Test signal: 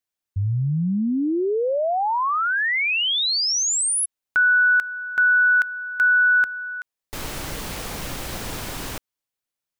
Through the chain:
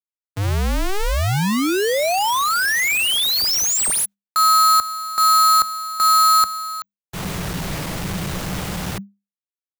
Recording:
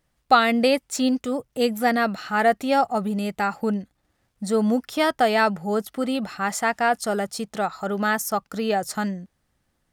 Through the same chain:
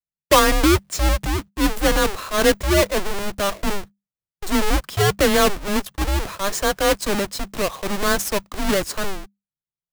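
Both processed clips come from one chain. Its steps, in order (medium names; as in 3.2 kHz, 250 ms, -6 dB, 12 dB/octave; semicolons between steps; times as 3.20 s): square wave that keeps the level; gate -33 dBFS, range -39 dB; frequency shift -200 Hz; transient shaper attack -3 dB, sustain +1 dB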